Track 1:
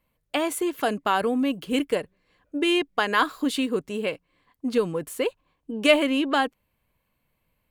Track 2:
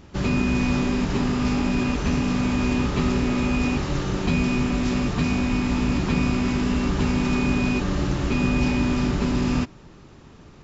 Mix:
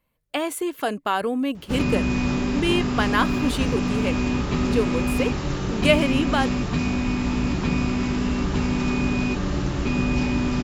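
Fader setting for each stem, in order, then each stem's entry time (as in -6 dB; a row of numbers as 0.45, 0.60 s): -0.5, -1.0 dB; 0.00, 1.55 s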